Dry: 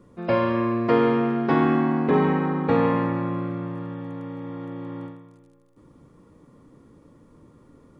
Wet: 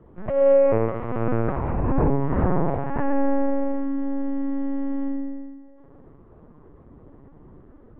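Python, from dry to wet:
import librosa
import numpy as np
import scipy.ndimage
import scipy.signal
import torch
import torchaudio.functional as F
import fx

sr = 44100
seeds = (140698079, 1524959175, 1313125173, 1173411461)

y = scipy.signal.sosfilt(scipy.signal.butter(2, 1900.0, 'lowpass', fs=sr, output='sos'), x)
y = fx.over_compress(y, sr, threshold_db=-23.0, ratio=-0.5)
y = fx.rev_fdn(y, sr, rt60_s=2.1, lf_ratio=0.8, hf_ratio=0.55, size_ms=10.0, drr_db=-2.0)
y = fx.lpc_vocoder(y, sr, seeds[0], excitation='pitch_kept', order=8)
y = y * 10.0 ** (-2.0 / 20.0)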